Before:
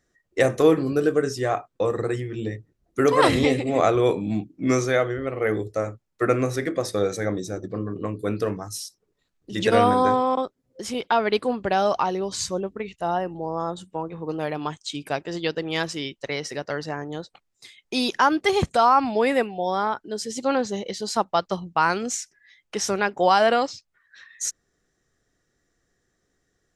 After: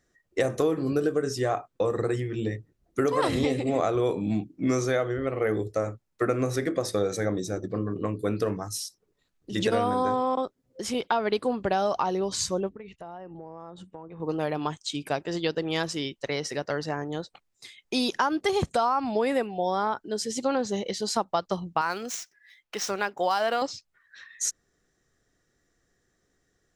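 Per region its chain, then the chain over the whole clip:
12.69–14.2 LPF 2200 Hz 6 dB/oct + compressor 5:1, threshold -39 dBFS
21.81–23.62 median filter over 5 samples + low shelf 490 Hz -10.5 dB
whole clip: dynamic EQ 2200 Hz, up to -4 dB, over -37 dBFS, Q 1.3; compressor 6:1, threshold -21 dBFS

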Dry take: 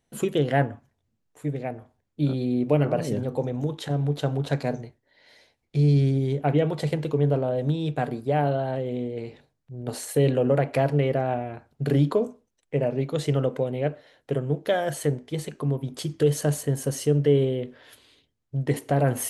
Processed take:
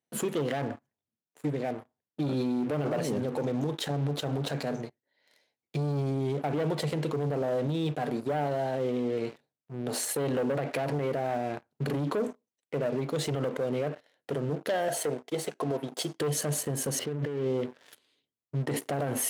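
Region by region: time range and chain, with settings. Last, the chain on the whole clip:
14.88–16.19 HPF 360 Hz 6 dB/oct + bell 630 Hz +13 dB 0.58 oct + notch comb 600 Hz
16.99–17.61 air absorption 420 m + negative-ratio compressor -31 dBFS + HPF 51 Hz
whole clip: sample leveller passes 3; HPF 170 Hz 12 dB/oct; limiter -14 dBFS; gain -7.5 dB

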